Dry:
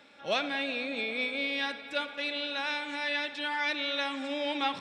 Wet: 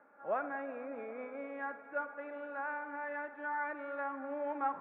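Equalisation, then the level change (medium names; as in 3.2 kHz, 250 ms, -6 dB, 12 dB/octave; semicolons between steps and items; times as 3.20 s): high-pass 680 Hz 6 dB/octave; steep low-pass 1.5 kHz 36 dB/octave; 0.0 dB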